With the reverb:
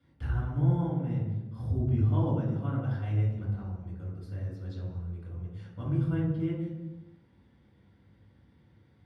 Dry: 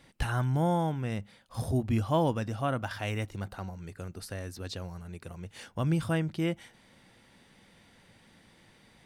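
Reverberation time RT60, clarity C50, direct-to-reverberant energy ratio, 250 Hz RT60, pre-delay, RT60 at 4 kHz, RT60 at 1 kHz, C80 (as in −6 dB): 1.2 s, 1.0 dB, −7.0 dB, 1.5 s, 3 ms, 0.85 s, 1.1 s, 4.0 dB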